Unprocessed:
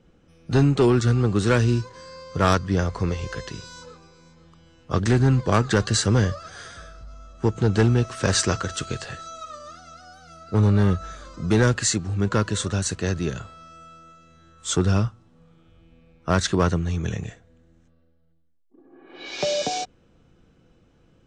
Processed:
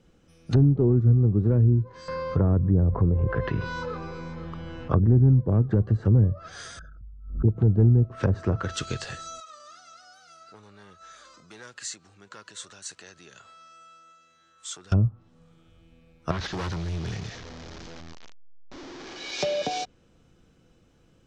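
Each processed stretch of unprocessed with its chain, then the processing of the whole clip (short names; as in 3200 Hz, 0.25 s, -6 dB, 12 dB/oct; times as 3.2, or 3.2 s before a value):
2.08–5.19 LPF 1900 Hz + fast leveller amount 50%
6.79–7.48 formant sharpening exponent 3 + backwards sustainer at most 100 dB/s
9.4–14.92 high shelf 6900 Hz -11.5 dB + compressor 2.5:1, threshold -38 dBFS + HPF 1200 Hz 6 dB/oct
16.31–19.32 delta modulation 32 kbps, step -33.5 dBFS + overloaded stage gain 26.5 dB + notch 2700 Hz, Q 27
whole clip: dynamic EQ 110 Hz, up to +5 dB, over -30 dBFS, Q 1.4; treble ducked by the level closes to 380 Hz, closed at -14.5 dBFS; high shelf 5200 Hz +10 dB; gain -2.5 dB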